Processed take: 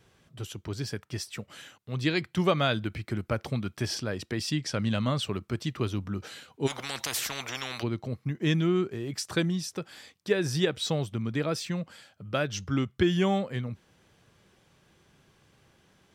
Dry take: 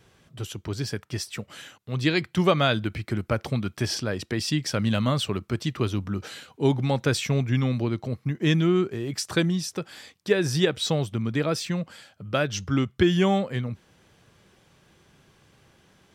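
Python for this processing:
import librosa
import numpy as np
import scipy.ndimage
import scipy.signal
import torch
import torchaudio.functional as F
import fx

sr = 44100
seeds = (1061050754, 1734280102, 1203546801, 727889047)

y = fx.lowpass(x, sr, hz=9500.0, slope=12, at=(4.58, 5.23))
y = fx.spectral_comp(y, sr, ratio=10.0, at=(6.66, 7.82), fade=0.02)
y = y * 10.0 ** (-4.0 / 20.0)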